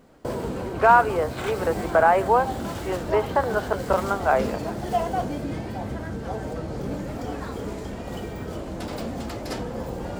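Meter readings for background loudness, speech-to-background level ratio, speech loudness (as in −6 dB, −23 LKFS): −31.0 LKFS, 8.5 dB, −22.5 LKFS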